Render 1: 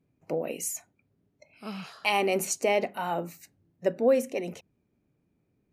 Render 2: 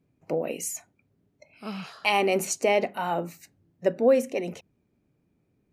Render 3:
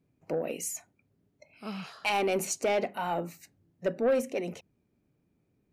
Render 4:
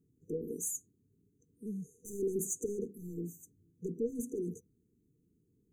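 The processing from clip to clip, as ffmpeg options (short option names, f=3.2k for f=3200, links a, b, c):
-af "highshelf=f=9.5k:g=-5.5,volume=2.5dB"
-af "asoftclip=type=tanh:threshold=-17.5dB,volume=-2.5dB"
-af "asoftclip=type=tanh:threshold=-27dB,afftfilt=real='re*(1-between(b*sr/4096,490,6000))':imag='im*(1-between(b*sr/4096,490,6000))':win_size=4096:overlap=0.75"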